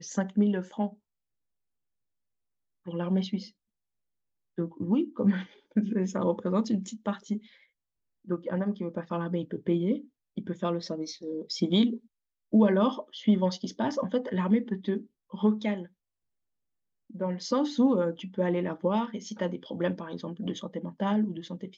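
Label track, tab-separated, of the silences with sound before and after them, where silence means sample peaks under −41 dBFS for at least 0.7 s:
0.930000	2.870000	silence
3.470000	4.580000	silence
7.380000	8.280000	silence
15.850000	17.100000	silence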